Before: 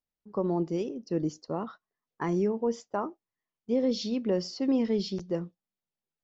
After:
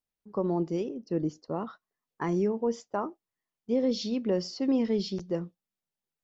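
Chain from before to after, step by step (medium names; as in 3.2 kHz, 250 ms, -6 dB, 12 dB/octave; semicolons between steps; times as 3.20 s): 0.79–1.54 s: treble shelf 5.2 kHz -> 3.5 kHz -9 dB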